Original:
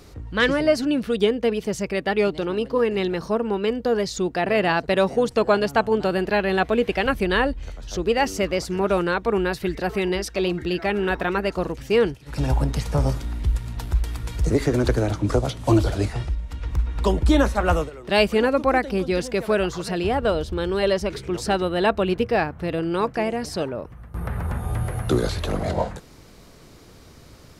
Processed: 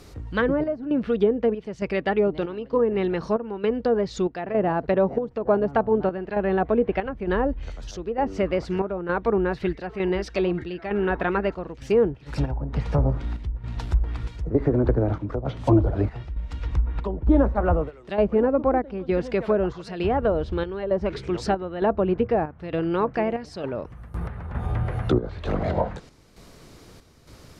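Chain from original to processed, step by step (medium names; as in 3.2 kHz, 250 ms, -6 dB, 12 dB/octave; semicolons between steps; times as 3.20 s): low-pass that closes with the level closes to 830 Hz, closed at -16 dBFS; square tremolo 1.1 Hz, depth 60%, duty 70%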